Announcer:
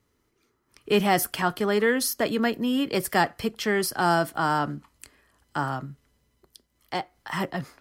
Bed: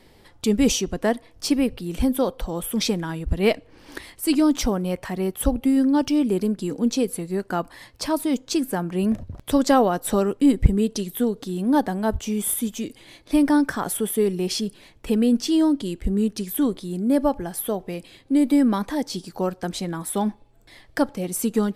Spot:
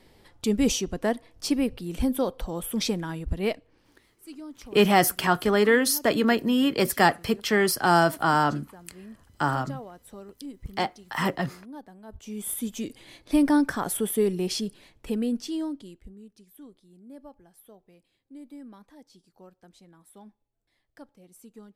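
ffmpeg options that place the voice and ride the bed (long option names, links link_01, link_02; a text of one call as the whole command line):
ffmpeg -i stem1.wav -i stem2.wav -filter_complex "[0:a]adelay=3850,volume=2.5dB[link_01];[1:a]volume=16.5dB,afade=type=out:start_time=3.18:duration=0.77:silence=0.112202,afade=type=in:start_time=12.08:duration=0.82:silence=0.0944061,afade=type=out:start_time=14.32:duration=1.83:silence=0.0668344[link_02];[link_01][link_02]amix=inputs=2:normalize=0" out.wav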